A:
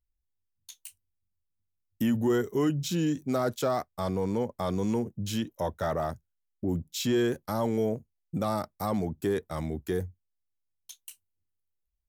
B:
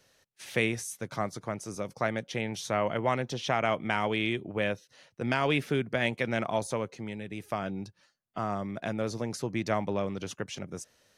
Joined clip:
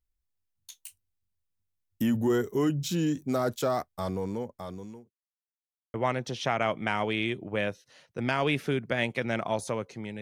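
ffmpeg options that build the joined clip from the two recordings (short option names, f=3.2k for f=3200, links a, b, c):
-filter_complex "[0:a]apad=whole_dur=10.21,atrim=end=10.21,asplit=2[a][b];[a]atrim=end=5.11,asetpts=PTS-STARTPTS,afade=t=out:st=3.85:d=1.26[c];[b]atrim=start=5.11:end=5.94,asetpts=PTS-STARTPTS,volume=0[d];[1:a]atrim=start=2.97:end=7.24,asetpts=PTS-STARTPTS,afade=t=in:d=0.004:c=hsin[e];[c][d][e]concat=n=3:v=0:a=1"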